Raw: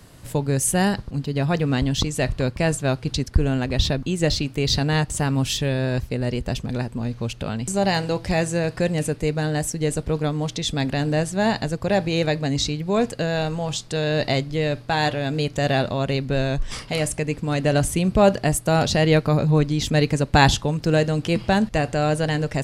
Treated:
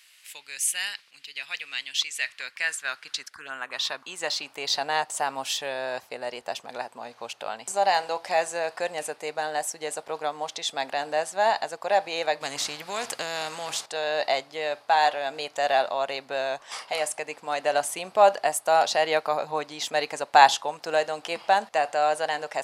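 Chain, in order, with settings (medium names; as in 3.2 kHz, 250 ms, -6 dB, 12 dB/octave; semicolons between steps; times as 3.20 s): high-pass sweep 2.4 kHz -> 770 Hz, 1.90–4.75 s; 3.29–3.73 s: touch-sensitive phaser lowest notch 170 Hz, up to 4.8 kHz, full sweep at -28 dBFS; 12.41–13.86 s: spectrum-flattening compressor 2:1; trim -3.5 dB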